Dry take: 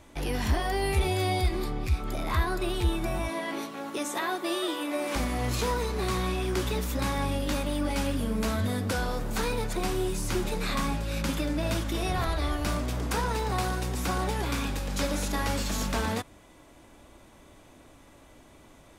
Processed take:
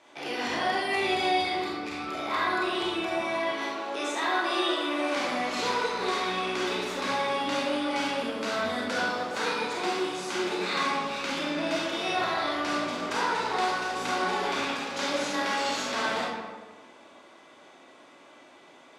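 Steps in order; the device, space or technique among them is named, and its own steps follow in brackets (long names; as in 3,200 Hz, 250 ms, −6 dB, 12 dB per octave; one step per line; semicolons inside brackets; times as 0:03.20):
supermarket ceiling speaker (band-pass filter 200–5,300 Hz; convolution reverb RT60 1.4 s, pre-delay 27 ms, DRR −5 dB)
high-pass filter 630 Hz 6 dB per octave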